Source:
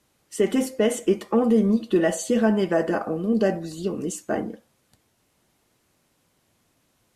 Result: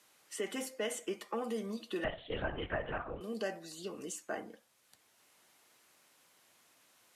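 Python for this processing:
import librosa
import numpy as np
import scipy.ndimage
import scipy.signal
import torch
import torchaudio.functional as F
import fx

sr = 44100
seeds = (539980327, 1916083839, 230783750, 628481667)

y = fx.highpass(x, sr, hz=1400.0, slope=6)
y = fx.lpc_vocoder(y, sr, seeds[0], excitation='whisper', order=10, at=(2.04, 3.21))
y = fx.band_squash(y, sr, depth_pct=40)
y = y * librosa.db_to_amplitude(-6.0)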